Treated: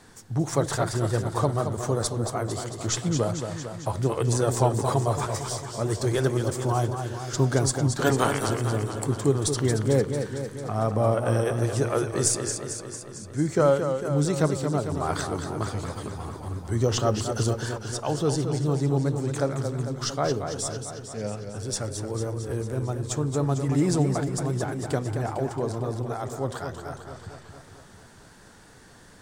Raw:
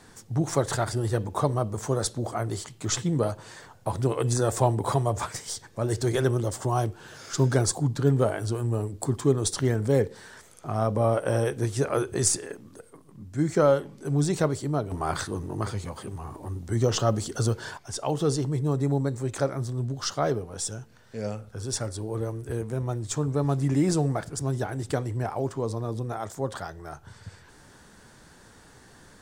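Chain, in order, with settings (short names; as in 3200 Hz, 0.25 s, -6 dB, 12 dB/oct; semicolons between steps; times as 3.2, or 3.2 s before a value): 7.98–8.47 spectral limiter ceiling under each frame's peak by 22 dB; warbling echo 0.225 s, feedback 65%, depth 87 cents, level -7.5 dB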